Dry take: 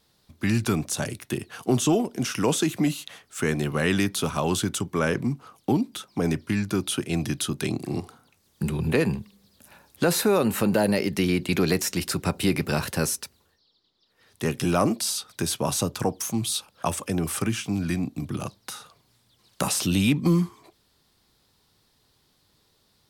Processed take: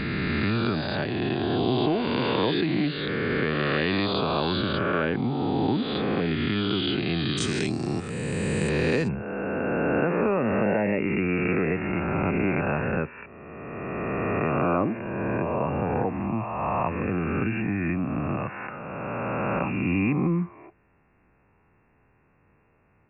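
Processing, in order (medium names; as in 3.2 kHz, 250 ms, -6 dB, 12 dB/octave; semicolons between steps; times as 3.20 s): reverse spectral sustain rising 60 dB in 2.49 s; compression 2:1, threshold -28 dBFS, peak gain reduction 8.5 dB; brick-wall FIR low-pass 4.9 kHz, from 7.37 s 9 kHz, from 9.07 s 2.8 kHz; trim +2 dB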